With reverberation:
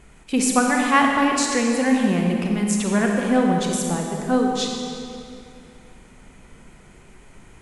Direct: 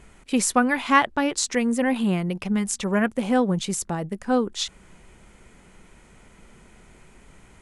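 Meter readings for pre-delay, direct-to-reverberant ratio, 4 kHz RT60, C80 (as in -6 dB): 32 ms, 0.5 dB, 2.0 s, 2.5 dB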